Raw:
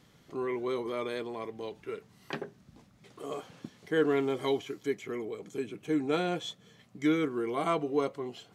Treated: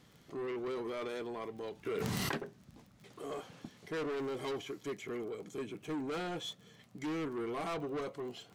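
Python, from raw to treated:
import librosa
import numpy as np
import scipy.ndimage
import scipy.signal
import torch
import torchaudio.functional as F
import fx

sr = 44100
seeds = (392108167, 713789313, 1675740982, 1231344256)

y = fx.dmg_crackle(x, sr, seeds[0], per_s=28.0, level_db=-46.0)
y = 10.0 ** (-33.5 / 20.0) * np.tanh(y / 10.0 ** (-33.5 / 20.0))
y = fx.env_flatten(y, sr, amount_pct=100, at=(1.85, 2.36), fade=0.02)
y = y * 10.0 ** (-1.0 / 20.0)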